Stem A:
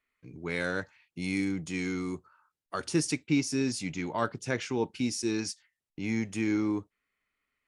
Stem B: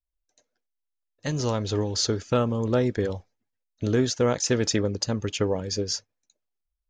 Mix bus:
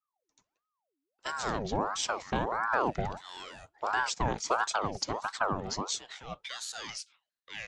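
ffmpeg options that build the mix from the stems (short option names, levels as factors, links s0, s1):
-filter_complex "[0:a]highpass=760,equalizer=f=2900:w=6.7:g=12.5,adelay=1500,volume=1.06[s0];[1:a]acrossover=split=490[s1][s2];[s1]aeval=exprs='val(0)*(1-0.5/2+0.5/2*cos(2*PI*1.1*n/s))':c=same[s3];[s2]aeval=exprs='val(0)*(1-0.5/2-0.5/2*cos(2*PI*1.1*n/s))':c=same[s4];[s3][s4]amix=inputs=2:normalize=0,volume=0.891,asplit=2[s5][s6];[s6]apad=whole_len=404731[s7];[s0][s7]sidechaincompress=threshold=0.00447:ratio=5:attack=22:release=254[s8];[s8][s5]amix=inputs=2:normalize=0,lowpass=7700,acrossover=split=390|3000[s9][s10][s11];[s10]acompressor=threshold=0.0447:ratio=6[s12];[s9][s12][s11]amix=inputs=3:normalize=0,aeval=exprs='val(0)*sin(2*PI*770*n/s+770*0.65/1.5*sin(2*PI*1.5*n/s))':c=same"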